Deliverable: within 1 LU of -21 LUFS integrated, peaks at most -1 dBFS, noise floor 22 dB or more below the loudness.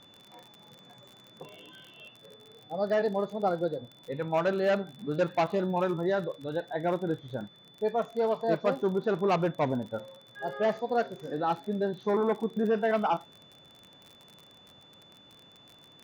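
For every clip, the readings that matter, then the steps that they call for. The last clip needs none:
ticks 39/s; steady tone 3500 Hz; tone level -55 dBFS; loudness -30.0 LUFS; peak -16.0 dBFS; loudness target -21.0 LUFS
-> de-click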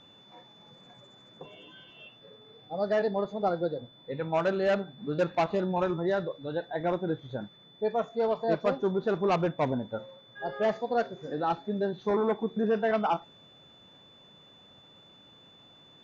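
ticks 0.062/s; steady tone 3500 Hz; tone level -55 dBFS
-> notch 3500 Hz, Q 30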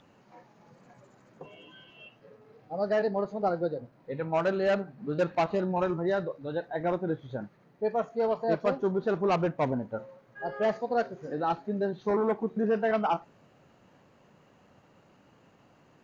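steady tone none; loudness -30.0 LUFS; peak -16.0 dBFS; loudness target -21.0 LUFS
-> gain +9 dB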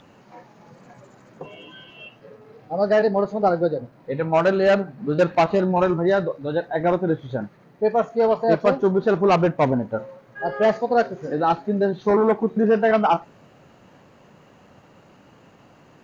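loudness -21.0 LUFS; peak -7.0 dBFS; noise floor -53 dBFS

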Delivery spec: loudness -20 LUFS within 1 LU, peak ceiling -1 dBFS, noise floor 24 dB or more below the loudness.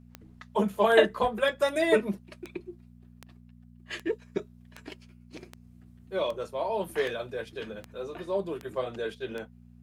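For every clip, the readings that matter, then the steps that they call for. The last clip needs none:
clicks 13; hum 60 Hz; harmonics up to 240 Hz; hum level -50 dBFS; loudness -29.5 LUFS; peak -5.5 dBFS; loudness target -20.0 LUFS
-> de-click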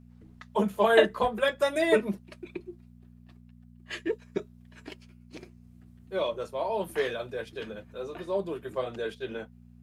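clicks 0; hum 60 Hz; harmonics up to 240 Hz; hum level -50 dBFS
-> de-hum 60 Hz, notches 4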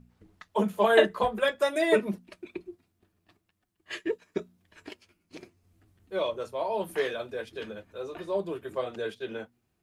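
hum none; loudness -29.5 LUFS; peak -5.5 dBFS; loudness target -20.0 LUFS
-> gain +9.5 dB; limiter -1 dBFS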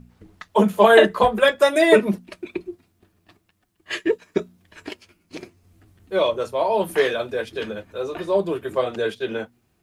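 loudness -20.5 LUFS; peak -1.0 dBFS; noise floor -67 dBFS

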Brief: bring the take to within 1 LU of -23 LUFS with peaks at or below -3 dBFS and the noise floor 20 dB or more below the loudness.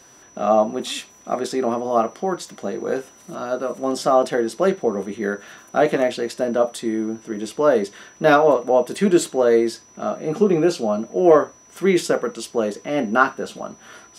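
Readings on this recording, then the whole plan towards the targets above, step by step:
steady tone 5900 Hz; tone level -49 dBFS; loudness -20.5 LUFS; peak -3.0 dBFS; loudness target -23.0 LUFS
-> notch 5900 Hz, Q 30; gain -2.5 dB

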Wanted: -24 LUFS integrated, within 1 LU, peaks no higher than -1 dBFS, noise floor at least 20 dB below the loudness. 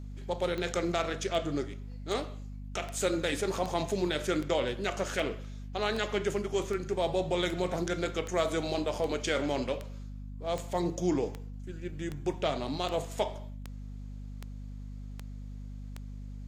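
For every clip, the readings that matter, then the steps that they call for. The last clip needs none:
clicks 21; hum 50 Hz; harmonics up to 250 Hz; hum level -39 dBFS; loudness -32.5 LUFS; peak -15.5 dBFS; loudness target -24.0 LUFS
-> de-click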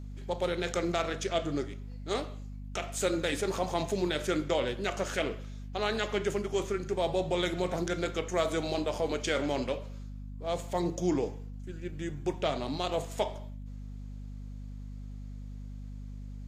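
clicks 0; hum 50 Hz; harmonics up to 250 Hz; hum level -39 dBFS
-> notches 50/100/150/200/250 Hz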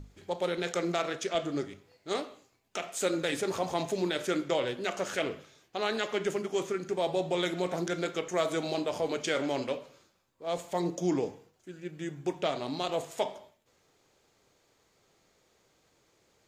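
hum none; loudness -32.5 LUFS; peak -16.5 dBFS; loudness target -24.0 LUFS
-> gain +8.5 dB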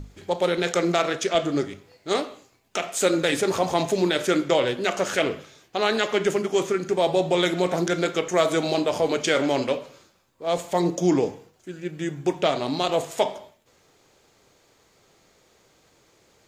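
loudness -24.0 LUFS; peak -8.0 dBFS; noise floor -61 dBFS

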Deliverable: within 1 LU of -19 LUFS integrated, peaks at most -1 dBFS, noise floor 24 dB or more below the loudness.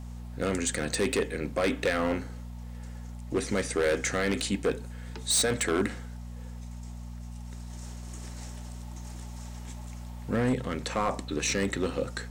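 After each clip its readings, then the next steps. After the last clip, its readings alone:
clipped 1.0%; flat tops at -20.5 dBFS; hum 60 Hz; harmonics up to 240 Hz; hum level -38 dBFS; loudness -29.0 LUFS; peak -20.5 dBFS; loudness target -19.0 LUFS
-> clip repair -20.5 dBFS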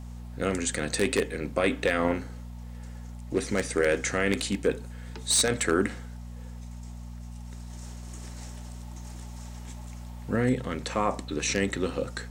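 clipped 0.0%; hum 60 Hz; harmonics up to 240 Hz; hum level -38 dBFS
-> de-hum 60 Hz, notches 4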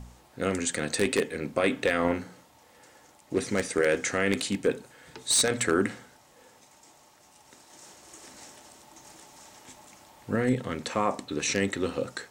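hum none; loudness -27.5 LUFS; peak -11.0 dBFS; loudness target -19.0 LUFS
-> gain +8.5 dB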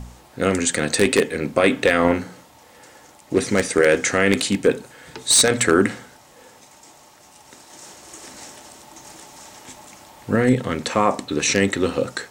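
loudness -19.0 LUFS; peak -2.5 dBFS; noise floor -50 dBFS

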